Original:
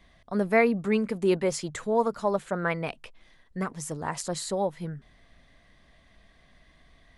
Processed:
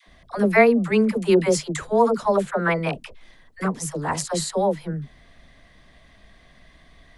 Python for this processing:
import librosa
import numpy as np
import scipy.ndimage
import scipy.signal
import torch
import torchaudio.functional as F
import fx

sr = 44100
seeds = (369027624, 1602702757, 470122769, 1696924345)

y = fx.dispersion(x, sr, late='lows', ms=71.0, hz=540.0)
y = y * librosa.db_to_amplitude(6.5)